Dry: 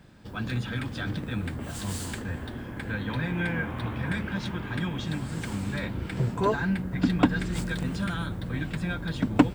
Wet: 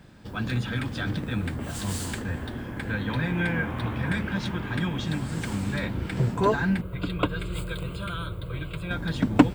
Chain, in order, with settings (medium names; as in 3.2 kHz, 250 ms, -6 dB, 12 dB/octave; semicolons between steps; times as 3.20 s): 6.81–8.91 s: static phaser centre 1.2 kHz, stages 8; trim +2.5 dB